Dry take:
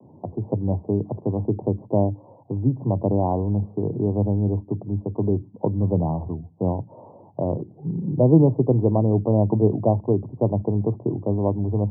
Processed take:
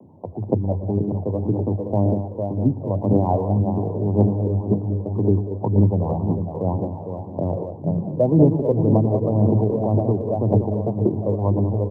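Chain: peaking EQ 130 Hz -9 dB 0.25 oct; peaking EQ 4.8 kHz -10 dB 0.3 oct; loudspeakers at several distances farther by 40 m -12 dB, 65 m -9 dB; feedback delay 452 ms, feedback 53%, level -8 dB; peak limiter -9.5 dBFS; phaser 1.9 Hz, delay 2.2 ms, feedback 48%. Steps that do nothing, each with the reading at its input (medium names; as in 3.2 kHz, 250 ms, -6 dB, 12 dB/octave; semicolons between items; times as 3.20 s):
peaking EQ 4.8 kHz: input has nothing above 960 Hz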